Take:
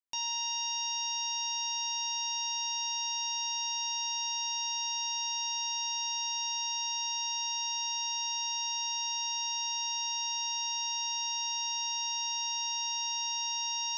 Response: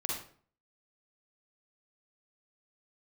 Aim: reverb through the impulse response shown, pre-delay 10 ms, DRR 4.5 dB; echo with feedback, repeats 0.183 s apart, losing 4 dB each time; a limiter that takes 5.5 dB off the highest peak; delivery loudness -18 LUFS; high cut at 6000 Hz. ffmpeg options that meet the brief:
-filter_complex "[0:a]lowpass=6k,alimiter=level_in=8.5dB:limit=-24dB:level=0:latency=1,volume=-8.5dB,aecho=1:1:183|366|549|732|915|1098|1281|1464|1647:0.631|0.398|0.25|0.158|0.0994|0.0626|0.0394|0.0249|0.0157,asplit=2[a][b];[1:a]atrim=start_sample=2205,adelay=10[c];[b][c]afir=irnorm=-1:irlink=0,volume=-8.5dB[d];[a][d]amix=inputs=2:normalize=0,volume=19.5dB"

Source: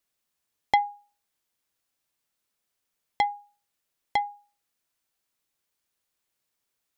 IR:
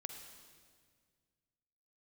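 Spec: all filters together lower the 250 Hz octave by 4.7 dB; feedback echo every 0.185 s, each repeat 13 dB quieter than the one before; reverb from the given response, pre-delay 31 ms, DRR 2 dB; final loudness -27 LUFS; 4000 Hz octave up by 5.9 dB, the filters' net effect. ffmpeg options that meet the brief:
-filter_complex "[0:a]equalizer=f=250:t=o:g=-6.5,equalizer=f=4k:t=o:g=7.5,aecho=1:1:185|370|555:0.224|0.0493|0.0108,asplit=2[a][b];[1:a]atrim=start_sample=2205,adelay=31[c];[b][c]afir=irnorm=-1:irlink=0,volume=1dB[d];[a][d]amix=inputs=2:normalize=0,volume=1.5dB"

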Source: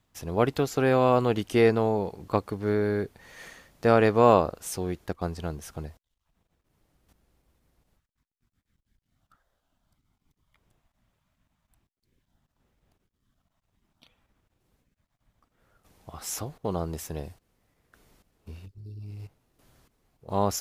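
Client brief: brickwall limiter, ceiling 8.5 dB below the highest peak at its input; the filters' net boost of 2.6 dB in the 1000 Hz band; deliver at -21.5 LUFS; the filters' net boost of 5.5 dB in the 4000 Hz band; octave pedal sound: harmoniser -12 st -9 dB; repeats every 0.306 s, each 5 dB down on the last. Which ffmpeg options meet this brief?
-filter_complex "[0:a]equalizer=f=1k:t=o:g=3,equalizer=f=4k:t=o:g=7,alimiter=limit=-11.5dB:level=0:latency=1,aecho=1:1:306|612|918|1224|1530|1836|2142:0.562|0.315|0.176|0.0988|0.0553|0.031|0.0173,asplit=2[a][b];[b]asetrate=22050,aresample=44100,atempo=2,volume=-9dB[c];[a][c]amix=inputs=2:normalize=0,volume=4.5dB"

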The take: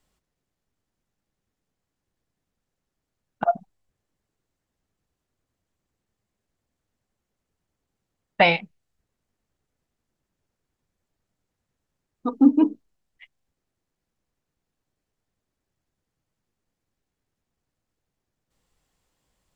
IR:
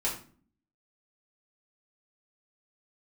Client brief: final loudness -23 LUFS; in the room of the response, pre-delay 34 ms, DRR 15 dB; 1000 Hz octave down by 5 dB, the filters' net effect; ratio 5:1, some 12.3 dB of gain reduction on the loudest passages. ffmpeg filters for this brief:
-filter_complex "[0:a]equalizer=f=1k:t=o:g=-8.5,acompressor=threshold=-24dB:ratio=5,asplit=2[a][b];[1:a]atrim=start_sample=2205,adelay=34[c];[b][c]afir=irnorm=-1:irlink=0,volume=-21.5dB[d];[a][d]amix=inputs=2:normalize=0,volume=8dB"

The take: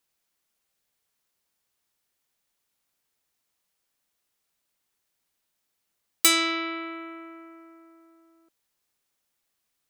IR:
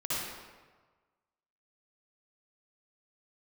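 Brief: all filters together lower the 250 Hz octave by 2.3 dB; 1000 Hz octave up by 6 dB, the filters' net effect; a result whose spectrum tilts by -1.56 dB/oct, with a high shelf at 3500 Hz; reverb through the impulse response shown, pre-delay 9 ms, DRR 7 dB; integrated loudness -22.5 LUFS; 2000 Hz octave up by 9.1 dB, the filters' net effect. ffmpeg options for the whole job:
-filter_complex "[0:a]equalizer=f=250:t=o:g=-4.5,equalizer=f=1k:t=o:g=3.5,equalizer=f=2k:t=o:g=8,highshelf=f=3.5k:g=6,asplit=2[a][b];[1:a]atrim=start_sample=2205,adelay=9[c];[b][c]afir=irnorm=-1:irlink=0,volume=-13.5dB[d];[a][d]amix=inputs=2:normalize=0,volume=-5.5dB"

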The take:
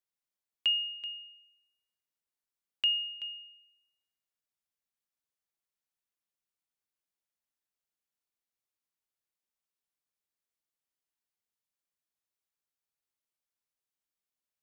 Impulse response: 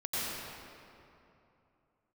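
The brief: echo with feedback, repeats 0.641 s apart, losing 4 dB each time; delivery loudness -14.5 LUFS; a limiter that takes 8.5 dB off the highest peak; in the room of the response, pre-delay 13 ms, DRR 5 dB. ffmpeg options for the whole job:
-filter_complex "[0:a]alimiter=level_in=5dB:limit=-24dB:level=0:latency=1,volume=-5dB,aecho=1:1:641|1282|1923|2564|3205|3846|4487|5128|5769:0.631|0.398|0.25|0.158|0.0994|0.0626|0.0394|0.0249|0.0157,asplit=2[a][b];[1:a]atrim=start_sample=2205,adelay=13[c];[b][c]afir=irnorm=-1:irlink=0,volume=-12dB[d];[a][d]amix=inputs=2:normalize=0,volume=22dB"

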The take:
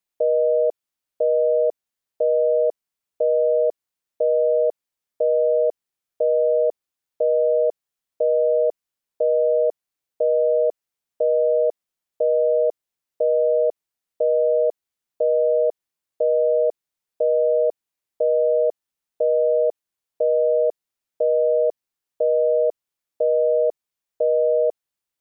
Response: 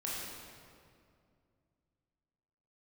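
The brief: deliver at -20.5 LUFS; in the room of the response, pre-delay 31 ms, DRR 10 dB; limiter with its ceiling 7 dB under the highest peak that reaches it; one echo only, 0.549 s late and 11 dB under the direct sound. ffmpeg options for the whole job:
-filter_complex "[0:a]alimiter=limit=-19dB:level=0:latency=1,aecho=1:1:549:0.282,asplit=2[a][b];[1:a]atrim=start_sample=2205,adelay=31[c];[b][c]afir=irnorm=-1:irlink=0,volume=-13dB[d];[a][d]amix=inputs=2:normalize=0,volume=6.5dB"

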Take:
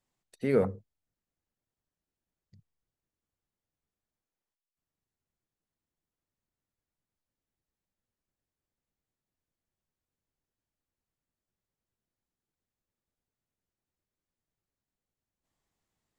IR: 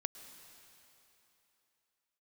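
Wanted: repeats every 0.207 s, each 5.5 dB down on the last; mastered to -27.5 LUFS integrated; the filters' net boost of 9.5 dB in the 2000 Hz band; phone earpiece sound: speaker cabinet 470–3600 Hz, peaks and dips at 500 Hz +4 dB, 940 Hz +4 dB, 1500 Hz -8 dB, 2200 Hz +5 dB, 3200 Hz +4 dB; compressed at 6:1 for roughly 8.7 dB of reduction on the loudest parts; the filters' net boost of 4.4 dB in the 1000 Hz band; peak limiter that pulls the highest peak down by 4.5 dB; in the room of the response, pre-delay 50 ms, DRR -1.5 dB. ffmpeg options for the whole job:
-filter_complex "[0:a]equalizer=f=1k:t=o:g=3.5,equalizer=f=2k:t=o:g=7,acompressor=threshold=-28dB:ratio=6,alimiter=limit=-24dB:level=0:latency=1,aecho=1:1:207|414|621|828|1035|1242|1449:0.531|0.281|0.149|0.079|0.0419|0.0222|0.0118,asplit=2[a][b];[1:a]atrim=start_sample=2205,adelay=50[c];[b][c]afir=irnorm=-1:irlink=0,volume=2.5dB[d];[a][d]amix=inputs=2:normalize=0,highpass=470,equalizer=f=500:t=q:w=4:g=4,equalizer=f=940:t=q:w=4:g=4,equalizer=f=1.5k:t=q:w=4:g=-8,equalizer=f=2.2k:t=q:w=4:g=5,equalizer=f=3.2k:t=q:w=4:g=4,lowpass=f=3.6k:w=0.5412,lowpass=f=3.6k:w=1.3066,volume=10.5dB"

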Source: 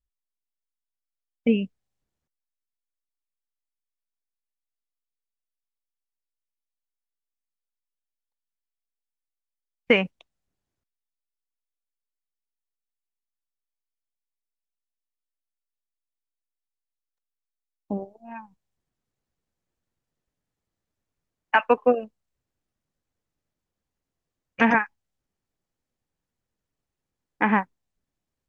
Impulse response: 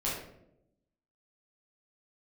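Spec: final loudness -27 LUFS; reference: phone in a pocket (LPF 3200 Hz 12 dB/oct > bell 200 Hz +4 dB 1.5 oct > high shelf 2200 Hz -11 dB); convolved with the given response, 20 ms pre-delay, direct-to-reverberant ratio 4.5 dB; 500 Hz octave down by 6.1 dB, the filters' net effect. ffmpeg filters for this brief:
-filter_complex "[0:a]equalizer=f=500:t=o:g=-7,asplit=2[a][b];[1:a]atrim=start_sample=2205,adelay=20[c];[b][c]afir=irnorm=-1:irlink=0,volume=-10.5dB[d];[a][d]amix=inputs=2:normalize=0,lowpass=3.2k,equalizer=f=200:t=o:w=1.5:g=4,highshelf=f=2.2k:g=-11,volume=-2.5dB"

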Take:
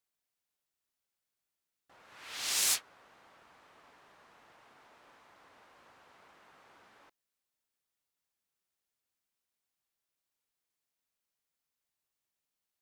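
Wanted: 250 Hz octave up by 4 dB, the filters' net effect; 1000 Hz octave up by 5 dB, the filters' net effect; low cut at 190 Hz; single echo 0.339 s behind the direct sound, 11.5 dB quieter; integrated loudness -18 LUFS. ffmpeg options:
-af "highpass=190,equalizer=f=250:t=o:g=6,equalizer=f=1k:t=o:g=6,aecho=1:1:339:0.266,volume=13.5dB"

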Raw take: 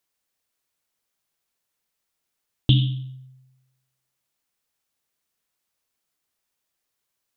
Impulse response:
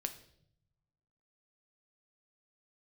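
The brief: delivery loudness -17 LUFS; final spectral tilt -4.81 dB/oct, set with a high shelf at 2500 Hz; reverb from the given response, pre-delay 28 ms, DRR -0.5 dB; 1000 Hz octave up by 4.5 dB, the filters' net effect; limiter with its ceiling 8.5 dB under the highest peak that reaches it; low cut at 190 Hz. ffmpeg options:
-filter_complex "[0:a]highpass=190,equalizer=f=1k:t=o:g=6.5,highshelf=f=2.5k:g=-3,alimiter=limit=-16dB:level=0:latency=1,asplit=2[a][b];[1:a]atrim=start_sample=2205,adelay=28[c];[b][c]afir=irnorm=-1:irlink=0,volume=1dB[d];[a][d]amix=inputs=2:normalize=0,volume=14dB"

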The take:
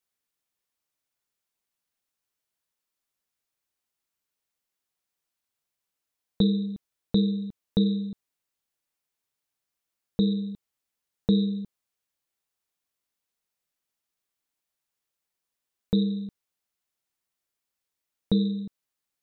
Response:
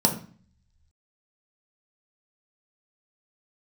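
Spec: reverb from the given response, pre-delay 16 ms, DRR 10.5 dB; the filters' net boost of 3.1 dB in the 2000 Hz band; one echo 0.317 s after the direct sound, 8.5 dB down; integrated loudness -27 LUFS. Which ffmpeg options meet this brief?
-filter_complex "[0:a]equalizer=f=2k:t=o:g=4,aecho=1:1:317:0.376,asplit=2[a][b];[1:a]atrim=start_sample=2205,adelay=16[c];[b][c]afir=irnorm=-1:irlink=0,volume=-24dB[d];[a][d]amix=inputs=2:normalize=0,volume=-3dB"

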